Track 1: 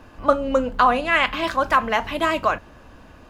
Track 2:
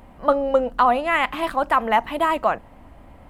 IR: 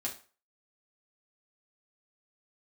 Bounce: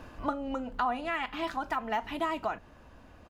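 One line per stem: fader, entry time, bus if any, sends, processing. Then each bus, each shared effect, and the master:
-0.5 dB, 0.00 s, no send, compression, threshold -22 dBFS, peak gain reduction 11 dB; auto duck -9 dB, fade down 0.45 s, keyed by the second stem
-14.0 dB, 1.3 ms, no send, low-pass 2.4 kHz 6 dB/octave; de-esser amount 80%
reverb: none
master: none

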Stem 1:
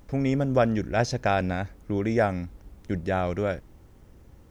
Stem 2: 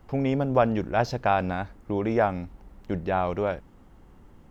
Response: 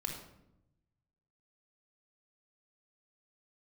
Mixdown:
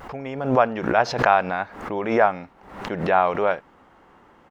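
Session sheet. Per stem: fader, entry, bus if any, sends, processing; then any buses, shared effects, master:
-16.0 dB, 0.00 s, no send, peaking EQ 130 Hz +4.5 dB
+0.5 dB, 4 ms, polarity flipped, no send, level rider gain up to 10.5 dB; band-pass filter 1.3 kHz, Q 0.66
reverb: none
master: bass shelf 210 Hz -3 dB; swell ahead of each attack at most 79 dB/s

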